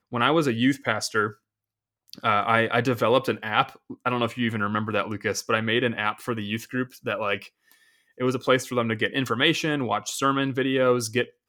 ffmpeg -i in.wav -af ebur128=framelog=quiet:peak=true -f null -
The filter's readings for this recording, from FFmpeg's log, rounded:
Integrated loudness:
  I:         -24.5 LUFS
  Threshold: -34.9 LUFS
Loudness range:
  LRA:         3.7 LU
  Threshold: -45.4 LUFS
  LRA low:   -27.5 LUFS
  LRA high:  -23.8 LUFS
True peak:
  Peak:       -3.6 dBFS